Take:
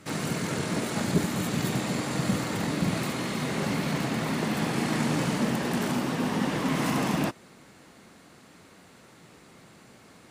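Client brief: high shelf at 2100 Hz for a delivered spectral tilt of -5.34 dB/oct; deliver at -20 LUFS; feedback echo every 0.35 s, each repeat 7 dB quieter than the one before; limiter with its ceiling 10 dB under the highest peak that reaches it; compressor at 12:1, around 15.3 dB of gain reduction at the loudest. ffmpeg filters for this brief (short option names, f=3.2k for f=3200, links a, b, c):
-af "highshelf=f=2.1k:g=-4,acompressor=threshold=-34dB:ratio=12,alimiter=level_in=10.5dB:limit=-24dB:level=0:latency=1,volume=-10.5dB,aecho=1:1:350|700|1050|1400|1750:0.447|0.201|0.0905|0.0407|0.0183,volume=23.5dB"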